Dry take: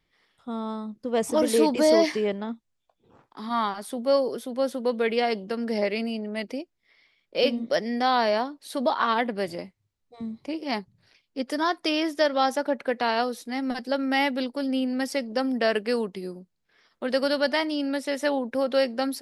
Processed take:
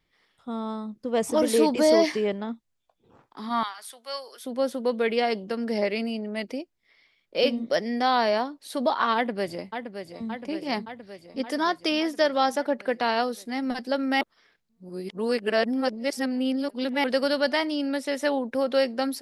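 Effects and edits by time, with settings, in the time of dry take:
0:03.63–0:04.45: high-pass filter 1,400 Hz
0:09.15–0:10.28: delay throw 570 ms, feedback 70%, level −8 dB
0:14.21–0:17.04: reverse

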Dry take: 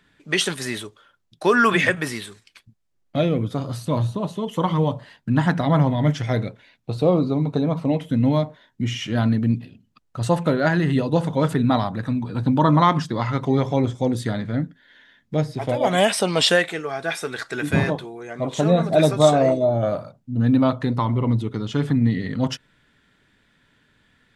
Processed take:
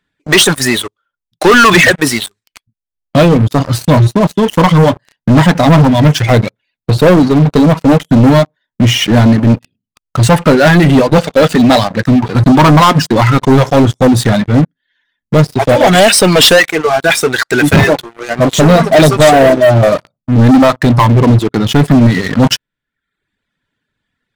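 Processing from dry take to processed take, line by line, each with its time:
0:11.18–0:12.06: loudspeaker in its box 120–8,100 Hz, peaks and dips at 140 Hz −8 dB, 340 Hz −7 dB, 530 Hz +5 dB, 1,000 Hz −9 dB, 2,700 Hz +5 dB, 4,400 Hz +6 dB
whole clip: reverb reduction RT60 0.97 s; leveller curve on the samples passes 5; level +1 dB

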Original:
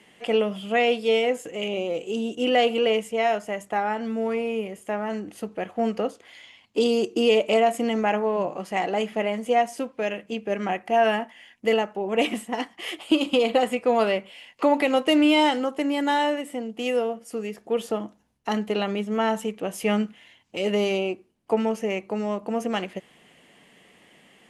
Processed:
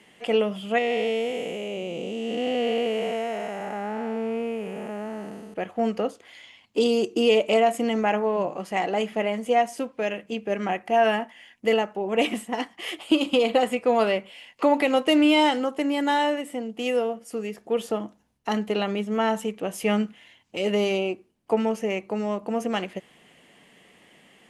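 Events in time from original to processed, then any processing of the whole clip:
0:00.78–0:05.54: spectrum smeared in time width 466 ms

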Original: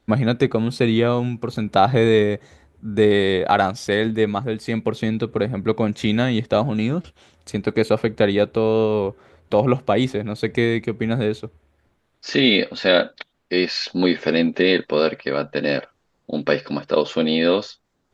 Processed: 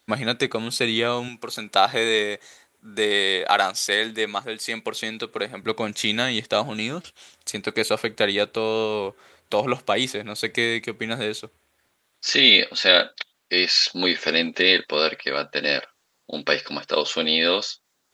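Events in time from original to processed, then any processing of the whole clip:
0:01.28–0:05.63: high-pass filter 300 Hz 6 dB per octave
whole clip: spectral tilt +4 dB per octave; level −1 dB

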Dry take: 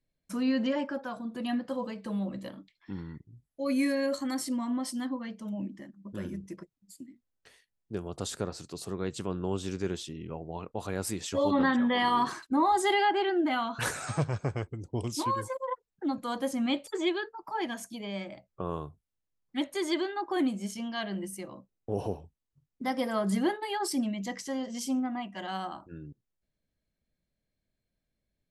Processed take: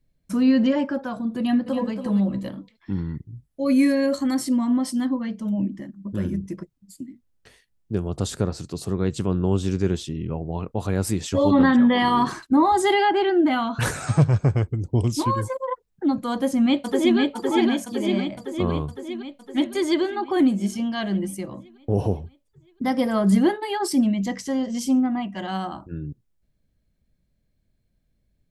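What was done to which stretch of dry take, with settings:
0:01.38–0:01.92: delay throw 280 ms, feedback 20%, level −8.5 dB
0:16.33–0:17.18: delay throw 510 ms, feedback 65%, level −1.5 dB
whole clip: low-shelf EQ 260 Hz +11.5 dB; level +4.5 dB

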